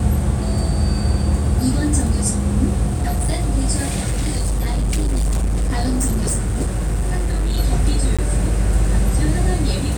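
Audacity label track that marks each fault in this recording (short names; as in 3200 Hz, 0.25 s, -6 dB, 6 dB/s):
2.870000	3.380000	clipped -15 dBFS
4.060000	7.590000	clipped -15 dBFS
8.170000	8.190000	gap 16 ms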